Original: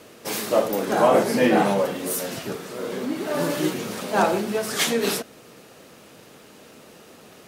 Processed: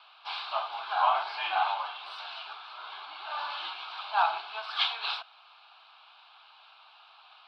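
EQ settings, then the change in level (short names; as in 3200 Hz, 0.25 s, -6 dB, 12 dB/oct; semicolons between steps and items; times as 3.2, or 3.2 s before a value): elliptic band-pass 760–4200 Hz, stop band 50 dB; fixed phaser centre 1900 Hz, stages 6; 0.0 dB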